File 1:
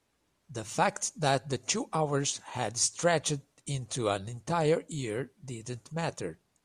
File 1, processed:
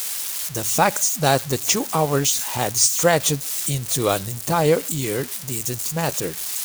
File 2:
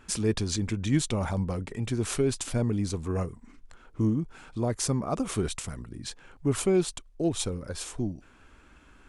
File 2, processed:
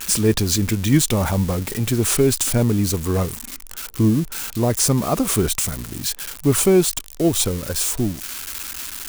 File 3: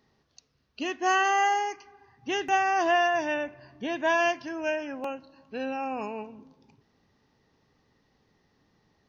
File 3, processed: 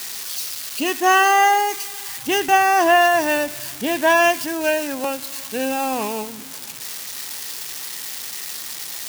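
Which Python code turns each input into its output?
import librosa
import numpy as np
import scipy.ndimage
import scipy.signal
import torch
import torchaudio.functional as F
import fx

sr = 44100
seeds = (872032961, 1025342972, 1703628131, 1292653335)

y = x + 0.5 * 10.0 ** (-27.0 / 20.0) * np.diff(np.sign(x), prepend=np.sign(x[:1]))
y = y * librosa.db_to_amplitude(9.0)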